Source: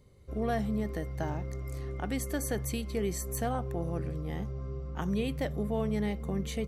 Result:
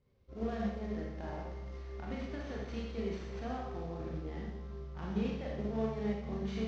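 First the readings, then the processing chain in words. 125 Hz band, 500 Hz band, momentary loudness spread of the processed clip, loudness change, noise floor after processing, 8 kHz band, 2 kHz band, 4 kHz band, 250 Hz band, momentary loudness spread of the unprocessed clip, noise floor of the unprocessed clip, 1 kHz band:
−7.5 dB, −5.0 dB, 9 LU, −5.5 dB, −48 dBFS, −22.5 dB, −6.5 dB, −7.0 dB, −4.5 dB, 7 LU, −39 dBFS, −6.0 dB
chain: variable-slope delta modulation 32 kbit/s
high-shelf EQ 4,100 Hz −11.5 dB
brickwall limiter −27.5 dBFS, peak gain reduction 7 dB
harmonic generator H 3 −22 dB, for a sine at −27.5 dBFS
four-comb reverb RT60 1 s, combs from 28 ms, DRR −3 dB
expander for the loud parts 1.5 to 1, over −47 dBFS
level −2.5 dB

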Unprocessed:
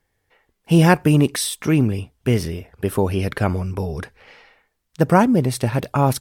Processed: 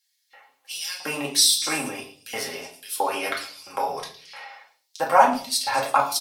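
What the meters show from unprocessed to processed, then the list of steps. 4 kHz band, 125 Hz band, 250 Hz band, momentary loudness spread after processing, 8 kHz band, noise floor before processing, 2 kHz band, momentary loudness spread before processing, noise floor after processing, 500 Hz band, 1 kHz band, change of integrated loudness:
+7.0 dB, −28.5 dB, −17.0 dB, 19 LU, +5.5 dB, −73 dBFS, −1.5 dB, 12 LU, −72 dBFS, −6.5 dB, +2.0 dB, −4.0 dB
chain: comb filter 7.4 ms, depth 55%
in parallel at +2 dB: downward compressor, threshold −22 dBFS, peak gain reduction 14 dB
on the sum: brickwall limiter −4.5 dBFS, peak gain reduction 6 dB
auto-filter high-pass square 1.5 Hz 800–4,400 Hz
on a send: echo through a band-pass that steps 111 ms, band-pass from 3,900 Hz, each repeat 0.7 octaves, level −9 dB
on the sum: rectangular room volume 370 cubic metres, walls furnished, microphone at 2.2 metres
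level −5.5 dB

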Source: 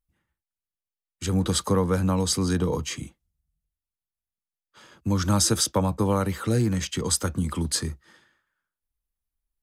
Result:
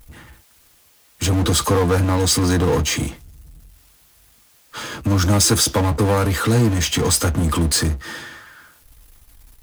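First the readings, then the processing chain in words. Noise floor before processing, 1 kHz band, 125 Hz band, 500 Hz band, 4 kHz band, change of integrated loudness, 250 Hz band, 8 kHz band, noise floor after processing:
below −85 dBFS, +7.0 dB, +7.5 dB, +7.0 dB, +8.0 dB, +6.5 dB, +5.0 dB, +7.0 dB, −55 dBFS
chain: power curve on the samples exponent 0.5
notch comb filter 190 Hz
level +2.5 dB

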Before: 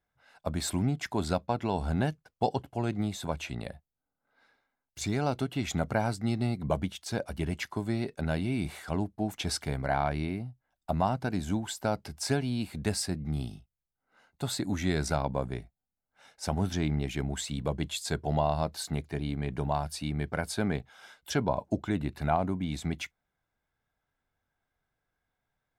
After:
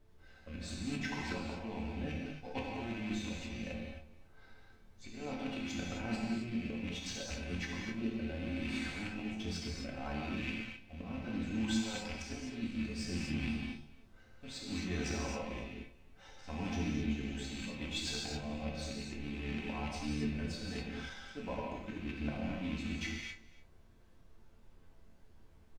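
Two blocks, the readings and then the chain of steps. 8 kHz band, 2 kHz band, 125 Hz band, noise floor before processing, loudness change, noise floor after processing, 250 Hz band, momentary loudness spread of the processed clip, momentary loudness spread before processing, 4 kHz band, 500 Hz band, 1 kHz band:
−9.0 dB, −3.5 dB, −11.0 dB, below −85 dBFS, −7.5 dB, −60 dBFS, −5.5 dB, 9 LU, 7 LU, −4.0 dB, −11.5 dB, −13.5 dB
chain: loose part that buzzes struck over −38 dBFS, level −26 dBFS
low-pass filter 6,800 Hz 24 dB per octave
comb filter 3.9 ms, depth 64%
volume swells 157 ms
reversed playback
downward compressor 5 to 1, threshold −42 dBFS, peak gain reduction 18 dB
reversed playback
rotating-speaker cabinet horn 0.65 Hz, later 5.5 Hz, at 0:20.92
background noise brown −63 dBFS
resonators tuned to a chord D2 minor, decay 0.25 s
single-tap delay 289 ms −19.5 dB
reverb whose tail is shaped and stops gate 290 ms flat, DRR −3 dB
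in parallel at −8 dB: slack as between gear wheels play −51 dBFS
on the sum: level +10 dB

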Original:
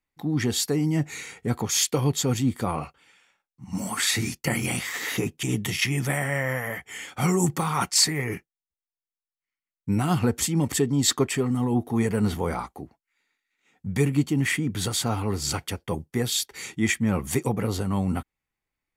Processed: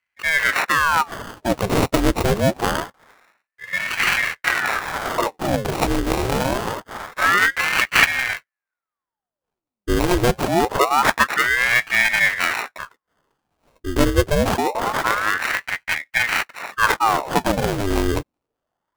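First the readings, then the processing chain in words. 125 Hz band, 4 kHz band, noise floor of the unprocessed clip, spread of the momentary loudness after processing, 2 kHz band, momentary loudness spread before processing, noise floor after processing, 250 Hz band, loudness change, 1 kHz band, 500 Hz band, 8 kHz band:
−2.0 dB, +3.0 dB, below −85 dBFS, 11 LU, +13.5 dB, 10 LU, below −85 dBFS, 0.0 dB, +6.0 dB, +12.5 dB, +6.5 dB, −3.5 dB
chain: low-pass filter 10,000 Hz 24 dB per octave
sample-rate reduction 1,600 Hz, jitter 0%
ring modulator whose carrier an LFO sweeps 1,100 Hz, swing 85%, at 0.25 Hz
level +8.5 dB

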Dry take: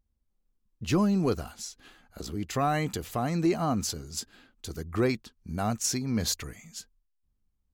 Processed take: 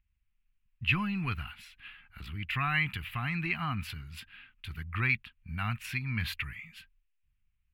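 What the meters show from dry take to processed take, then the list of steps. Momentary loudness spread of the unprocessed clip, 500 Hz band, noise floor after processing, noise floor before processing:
15 LU, −21.0 dB, −76 dBFS, −76 dBFS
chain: drawn EQ curve 130 Hz 0 dB, 540 Hz −28 dB, 900 Hz −6 dB, 2,600 Hz +13 dB, 6,400 Hz −28 dB, 11,000 Hz −10 dB

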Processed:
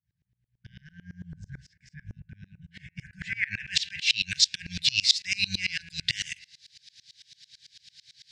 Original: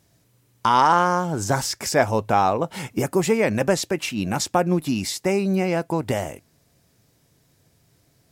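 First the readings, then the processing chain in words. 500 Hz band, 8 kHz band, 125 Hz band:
below −40 dB, −4.5 dB, −15.5 dB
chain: sub-octave generator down 1 octave, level −3 dB
low-pass filter 5,900 Hz 12 dB per octave
spectral tilt +4 dB per octave
in parallel at 0 dB: output level in coarse steps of 17 dB
on the sum: low-pass filter sweep 430 Hz → 4,100 Hz, 0:02.41–0:04.03
brickwall limiter −15 dBFS, peak gain reduction 14.5 dB
linear-phase brick-wall band-stop 190–1,500 Hz
high-shelf EQ 2,400 Hz +10.5 dB
hum removal 83.82 Hz, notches 35
tremolo with a ramp in dB swelling 9 Hz, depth 27 dB
level +2 dB

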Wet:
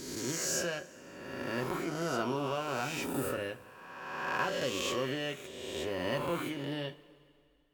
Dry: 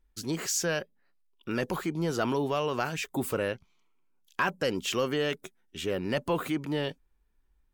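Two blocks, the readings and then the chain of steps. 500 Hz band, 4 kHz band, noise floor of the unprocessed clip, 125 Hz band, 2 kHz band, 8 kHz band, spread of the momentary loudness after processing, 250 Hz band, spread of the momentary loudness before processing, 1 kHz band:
−4.5 dB, −2.5 dB, −69 dBFS, −5.5 dB, −2.5 dB, −2.0 dB, 10 LU, −5.0 dB, 8 LU, −2.5 dB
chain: peak hold with a rise ahead of every peak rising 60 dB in 1.66 s
coupled-rooms reverb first 0.22 s, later 2.4 s, from −21 dB, DRR 5.5 dB
level −9 dB

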